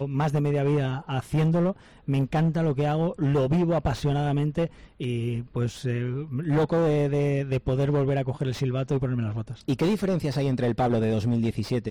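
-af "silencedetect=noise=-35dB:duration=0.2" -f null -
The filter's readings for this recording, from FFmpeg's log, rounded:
silence_start: 1.72
silence_end: 2.08 | silence_duration: 0.36
silence_start: 4.67
silence_end: 5.00 | silence_duration: 0.34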